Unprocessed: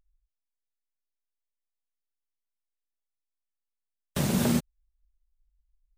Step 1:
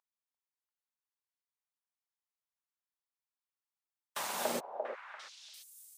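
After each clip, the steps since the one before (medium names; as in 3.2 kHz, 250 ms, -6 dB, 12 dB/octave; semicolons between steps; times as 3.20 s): high-pass sweep 950 Hz -> 190 Hz, 4.33–4.94 s; repeats whose band climbs or falls 344 ms, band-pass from 610 Hz, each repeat 1.4 oct, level -2 dB; trim -5.5 dB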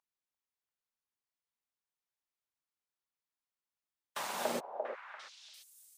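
treble shelf 6.1 kHz -6 dB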